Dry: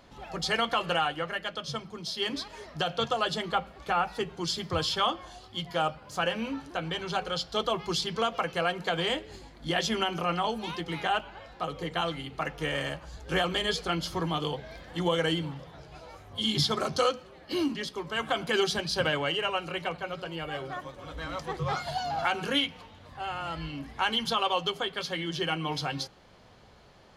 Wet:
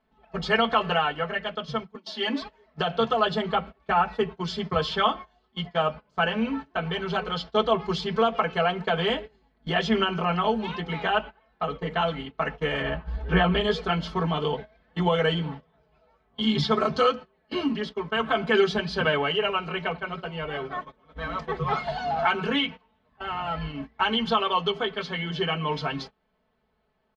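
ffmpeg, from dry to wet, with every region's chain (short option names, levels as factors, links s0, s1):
-filter_complex "[0:a]asettb=1/sr,asplit=3[s0][s1][s2];[s0]atrim=end=1.954[s3];[s1]atrim=start=1.95:end=2.42,asetpts=PTS-STARTPTS,afade=t=in:d=0.004:c=qsin,afade=t=out:st=0.466:d=0.004:c=qsin,highpass=f=220:w=0.5412,highpass=f=220:w=1.3066,aecho=1:1:3.5:0.67,atrim=end_sample=20727[s4];[s2]atrim=start=2.416[s5];[s3][s4]acrossfade=d=0.004:c1=hsin:c2=qsin[s6];[s6][s5]acrossfade=d=0.004:c1=qsin:c2=hsin,asettb=1/sr,asplit=3[s7][s8][s9];[s7]atrim=end=12.814[s10];[s8]atrim=start=12.81:end=13.61,asetpts=PTS-STARTPTS,afade=t=in:d=0.004:c=qsin,afade=t=out:st=0.796:d=0.004:c=qsin,lowpass=3700,lowshelf=f=140:g=8.5,asplit=2[s11][s12];[s12]adelay=17,volume=0.316[s13];[s11][s13]amix=inputs=2:normalize=0,atrim=end_sample=35280[s14];[s9]atrim=start=13.606[s15];[s10][s14]acrossfade=d=0.004:c1=hsin:c2=qsin[s16];[s16][s15]acrossfade=d=0.004:c1=qsin:c2=hsin,agate=range=0.0891:threshold=0.0126:ratio=16:detection=peak,lowpass=2700,aecho=1:1:4.6:0.97,volume=1.33"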